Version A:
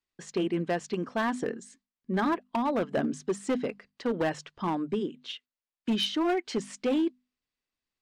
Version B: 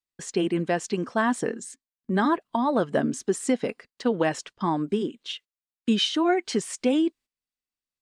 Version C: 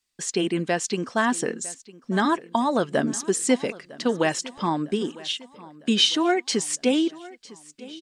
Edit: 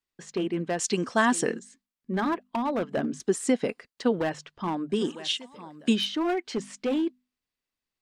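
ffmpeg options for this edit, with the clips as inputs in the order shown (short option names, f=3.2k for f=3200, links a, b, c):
-filter_complex "[2:a]asplit=2[a][b];[0:a]asplit=4[c][d][e][f];[c]atrim=end=0.792[g];[a]atrim=start=0.788:end=1.592[h];[d]atrim=start=1.588:end=3.202[i];[1:a]atrim=start=3.198:end=4.192[j];[e]atrim=start=4.188:end=4.99[k];[b]atrim=start=4.89:end=6[l];[f]atrim=start=5.9[m];[g][h]acrossfade=d=0.004:c1=hsin:c2=hsin[n];[n][i]acrossfade=d=0.004:c1=hsin:c2=hsin[o];[o][j]acrossfade=d=0.004:c1=hsin:c2=hsin[p];[p][k]acrossfade=d=0.004:c1=hsin:c2=hsin[q];[q][l]acrossfade=d=0.1:c1=tri:c2=tri[r];[r][m]acrossfade=d=0.1:c1=tri:c2=tri"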